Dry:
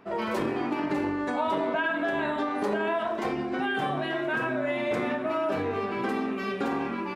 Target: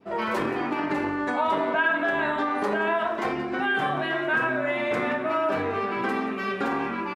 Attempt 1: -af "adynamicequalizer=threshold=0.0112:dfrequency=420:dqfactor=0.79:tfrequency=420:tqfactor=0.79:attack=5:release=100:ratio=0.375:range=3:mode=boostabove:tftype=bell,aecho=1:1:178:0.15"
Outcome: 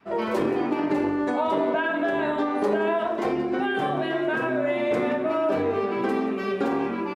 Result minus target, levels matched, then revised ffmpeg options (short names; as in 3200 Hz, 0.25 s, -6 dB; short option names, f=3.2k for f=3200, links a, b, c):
2000 Hz band -5.5 dB
-af "adynamicequalizer=threshold=0.0112:dfrequency=1500:dqfactor=0.79:tfrequency=1500:tqfactor=0.79:attack=5:release=100:ratio=0.375:range=3:mode=boostabove:tftype=bell,aecho=1:1:178:0.15"